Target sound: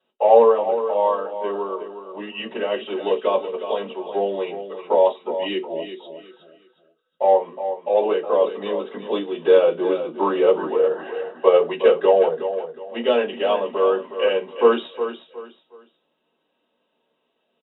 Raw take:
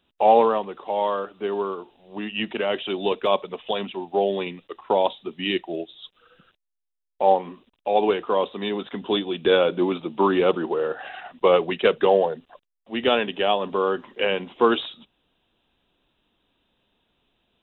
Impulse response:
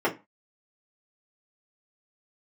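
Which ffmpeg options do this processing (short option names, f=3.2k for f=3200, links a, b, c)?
-filter_complex "[0:a]asplit=2[a][b];[b]asoftclip=type=tanh:threshold=-13.5dB,volume=-10dB[c];[a][c]amix=inputs=2:normalize=0,aecho=1:1:364|728|1092:0.316|0.0917|0.0266[d];[1:a]atrim=start_sample=2205,asetrate=61740,aresample=44100[e];[d][e]afir=irnorm=-1:irlink=0,volume=-15dB"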